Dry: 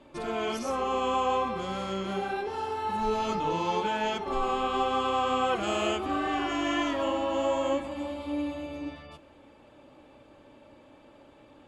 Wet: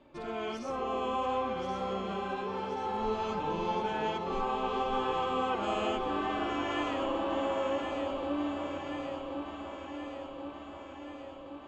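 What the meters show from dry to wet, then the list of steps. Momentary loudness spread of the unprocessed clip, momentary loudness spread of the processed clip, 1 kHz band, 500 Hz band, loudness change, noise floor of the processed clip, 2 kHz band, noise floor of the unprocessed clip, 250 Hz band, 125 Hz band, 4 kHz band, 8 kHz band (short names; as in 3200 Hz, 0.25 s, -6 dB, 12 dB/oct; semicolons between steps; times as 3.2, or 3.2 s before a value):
7 LU, 11 LU, -3.5 dB, -3.0 dB, -4.0 dB, -46 dBFS, -4.5 dB, -55 dBFS, -3.0 dB, -2.5 dB, -5.5 dB, under -10 dB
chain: air absorption 88 m; on a send: echo with dull and thin repeats by turns 0.539 s, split 820 Hz, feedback 80%, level -4 dB; on the sum: gain -5 dB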